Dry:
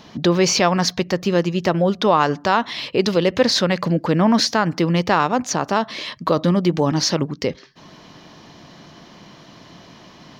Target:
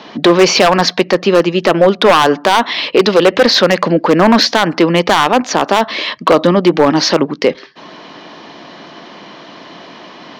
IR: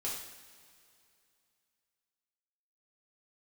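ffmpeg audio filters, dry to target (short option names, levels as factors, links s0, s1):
-filter_complex "[0:a]acrossover=split=230 4800:gain=0.0891 1 0.0794[s0][s1][s2];[s0][s1][s2]amix=inputs=3:normalize=0,acontrast=67,aeval=exprs='0.447*(abs(mod(val(0)/0.447+3,4)-2)-1)':c=same,volume=1.88"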